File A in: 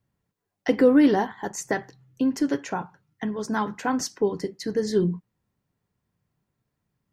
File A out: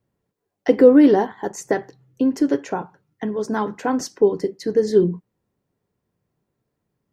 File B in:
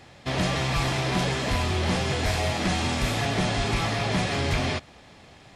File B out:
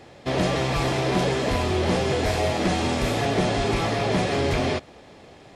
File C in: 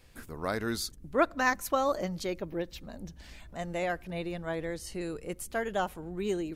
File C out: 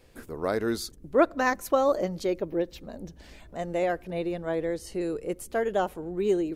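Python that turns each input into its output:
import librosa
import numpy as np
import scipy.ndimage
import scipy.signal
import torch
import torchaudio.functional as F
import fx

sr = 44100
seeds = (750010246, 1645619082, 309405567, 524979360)

y = fx.peak_eq(x, sr, hz=430.0, db=9.0, octaves=1.6)
y = F.gain(torch.from_numpy(y), -1.0).numpy()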